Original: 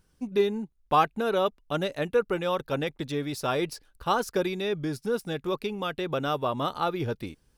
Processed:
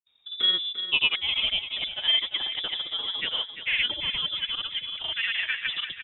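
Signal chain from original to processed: speed glide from 86% -> 165%; grains 0.1 s, pitch spread up and down by 0 st; on a send: feedback echo 0.345 s, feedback 49%, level -10.5 dB; on the sum: inverted band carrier 3700 Hz

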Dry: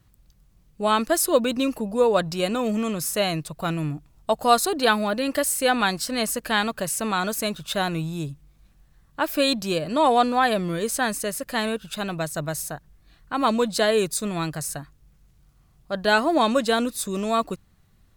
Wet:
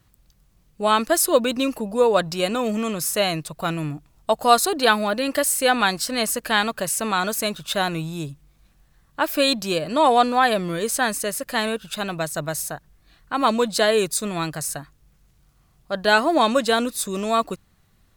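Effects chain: low shelf 290 Hz -5 dB; gain +3 dB

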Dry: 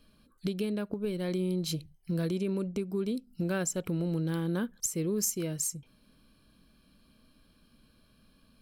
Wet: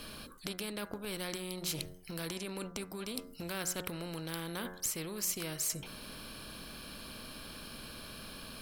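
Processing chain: de-hum 90.69 Hz, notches 23; reverse; compressor 6:1, threshold -42 dBFS, peak gain reduction 15.5 dB; reverse; spectral compressor 2:1; gain +13.5 dB

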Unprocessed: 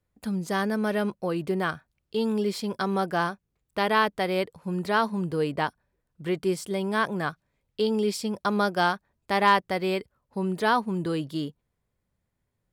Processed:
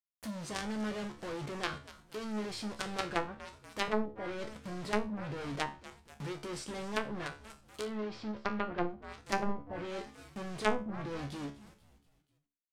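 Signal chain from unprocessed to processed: added harmonics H 2 -23 dB, 5 -16 dB, 6 -23 dB, 7 -30 dB, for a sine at -8 dBFS; companded quantiser 2-bit; dynamic EQ 8700 Hz, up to +5 dB, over -46 dBFS, Q 5.1; on a send: frequency-shifting echo 0.241 s, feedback 51%, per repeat -110 Hz, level -18 dB; on the sum: treble ducked by the level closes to 440 Hz, closed at -11.5 dBFS; 7.85–8.85 air absorption 230 m; resonator 71 Hz, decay 0.28 s, harmonics all, mix 80%; ending taper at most 160 dB/s; gain -7.5 dB

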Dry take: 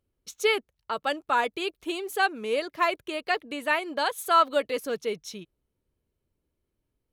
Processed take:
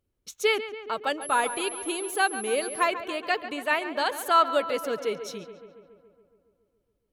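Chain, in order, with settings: darkening echo 0.14 s, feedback 69%, low-pass 3200 Hz, level -12 dB; 1.21–2.82 whine 11000 Hz -36 dBFS

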